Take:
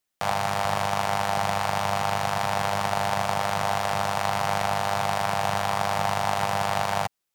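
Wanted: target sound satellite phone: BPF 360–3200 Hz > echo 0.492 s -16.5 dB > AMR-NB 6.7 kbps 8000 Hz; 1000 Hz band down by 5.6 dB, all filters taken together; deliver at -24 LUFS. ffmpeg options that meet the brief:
-af "highpass=360,lowpass=3.2k,equalizer=f=1k:t=o:g=-7.5,aecho=1:1:492:0.15,volume=8.5dB" -ar 8000 -c:a libopencore_amrnb -b:a 6700

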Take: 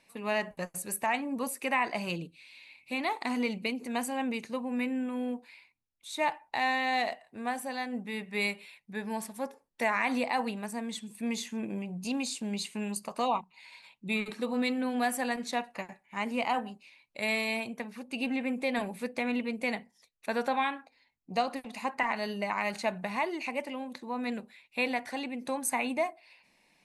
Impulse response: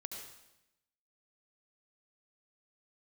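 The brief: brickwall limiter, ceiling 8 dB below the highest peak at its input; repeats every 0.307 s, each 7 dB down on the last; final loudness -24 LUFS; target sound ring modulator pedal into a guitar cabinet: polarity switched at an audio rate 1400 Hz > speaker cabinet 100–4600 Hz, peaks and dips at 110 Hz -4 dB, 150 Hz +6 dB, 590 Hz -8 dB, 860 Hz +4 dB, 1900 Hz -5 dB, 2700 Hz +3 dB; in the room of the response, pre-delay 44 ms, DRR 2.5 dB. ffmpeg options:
-filter_complex "[0:a]alimiter=limit=-24dB:level=0:latency=1,aecho=1:1:307|614|921|1228|1535:0.447|0.201|0.0905|0.0407|0.0183,asplit=2[a][b];[1:a]atrim=start_sample=2205,adelay=44[c];[b][c]afir=irnorm=-1:irlink=0,volume=0dB[d];[a][d]amix=inputs=2:normalize=0,aeval=exprs='val(0)*sgn(sin(2*PI*1400*n/s))':c=same,highpass=100,equalizer=f=110:t=q:w=4:g=-4,equalizer=f=150:t=q:w=4:g=6,equalizer=f=590:t=q:w=4:g=-8,equalizer=f=860:t=q:w=4:g=4,equalizer=f=1.9k:t=q:w=4:g=-5,equalizer=f=2.7k:t=q:w=4:g=3,lowpass=f=4.6k:w=0.5412,lowpass=f=4.6k:w=1.3066,volume=8.5dB"

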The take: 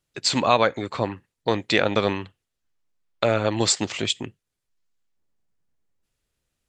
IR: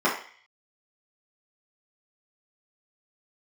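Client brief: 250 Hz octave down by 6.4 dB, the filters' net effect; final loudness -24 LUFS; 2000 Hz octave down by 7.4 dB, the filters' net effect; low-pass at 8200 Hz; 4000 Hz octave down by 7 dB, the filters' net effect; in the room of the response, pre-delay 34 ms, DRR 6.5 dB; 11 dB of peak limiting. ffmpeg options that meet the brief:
-filter_complex "[0:a]lowpass=8.2k,equalizer=f=250:t=o:g=-8.5,equalizer=f=2k:t=o:g=-8,equalizer=f=4k:t=o:g=-6,alimiter=limit=-19dB:level=0:latency=1,asplit=2[a][b];[1:a]atrim=start_sample=2205,adelay=34[c];[b][c]afir=irnorm=-1:irlink=0,volume=-23dB[d];[a][d]amix=inputs=2:normalize=0,volume=7.5dB"

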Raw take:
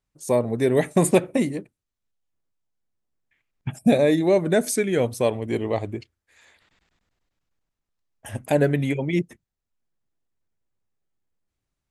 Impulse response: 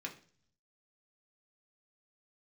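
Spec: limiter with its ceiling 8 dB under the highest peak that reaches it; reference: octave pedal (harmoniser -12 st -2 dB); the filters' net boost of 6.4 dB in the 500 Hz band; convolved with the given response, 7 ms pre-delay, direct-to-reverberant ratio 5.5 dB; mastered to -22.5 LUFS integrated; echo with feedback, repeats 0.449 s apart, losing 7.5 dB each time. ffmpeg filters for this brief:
-filter_complex "[0:a]equalizer=f=500:t=o:g=8,alimiter=limit=-9.5dB:level=0:latency=1,aecho=1:1:449|898|1347|1796|2245:0.422|0.177|0.0744|0.0312|0.0131,asplit=2[a][b];[1:a]atrim=start_sample=2205,adelay=7[c];[b][c]afir=irnorm=-1:irlink=0,volume=-5dB[d];[a][d]amix=inputs=2:normalize=0,asplit=2[e][f];[f]asetrate=22050,aresample=44100,atempo=2,volume=-2dB[g];[e][g]amix=inputs=2:normalize=0,volume=-4.5dB"

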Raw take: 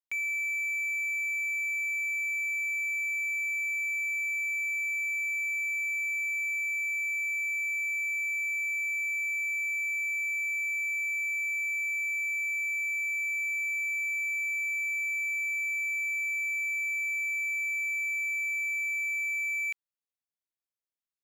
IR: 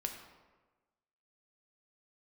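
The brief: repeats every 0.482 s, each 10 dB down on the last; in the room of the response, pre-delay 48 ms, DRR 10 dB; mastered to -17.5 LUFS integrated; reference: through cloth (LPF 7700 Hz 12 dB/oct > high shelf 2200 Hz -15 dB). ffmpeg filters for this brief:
-filter_complex "[0:a]aecho=1:1:482|964|1446|1928:0.316|0.101|0.0324|0.0104,asplit=2[a][b];[1:a]atrim=start_sample=2205,adelay=48[c];[b][c]afir=irnorm=-1:irlink=0,volume=-10dB[d];[a][d]amix=inputs=2:normalize=0,lowpass=7.7k,highshelf=f=2.2k:g=-15,volume=19.5dB"

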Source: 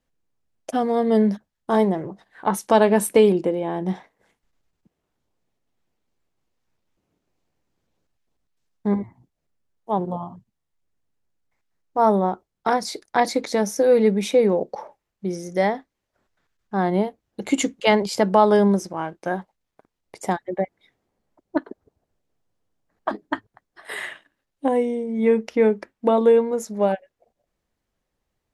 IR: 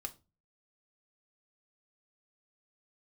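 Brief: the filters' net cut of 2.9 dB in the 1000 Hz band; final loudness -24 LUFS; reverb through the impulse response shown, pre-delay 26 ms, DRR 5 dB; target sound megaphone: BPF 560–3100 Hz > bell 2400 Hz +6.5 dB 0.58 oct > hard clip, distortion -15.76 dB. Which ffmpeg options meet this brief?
-filter_complex "[0:a]equalizer=f=1k:t=o:g=-3,asplit=2[a][b];[1:a]atrim=start_sample=2205,adelay=26[c];[b][c]afir=irnorm=-1:irlink=0,volume=-3dB[d];[a][d]amix=inputs=2:normalize=0,highpass=560,lowpass=3.1k,equalizer=f=2.4k:t=o:w=0.58:g=6.5,asoftclip=type=hard:threshold=-12.5dB,volume=2dB"

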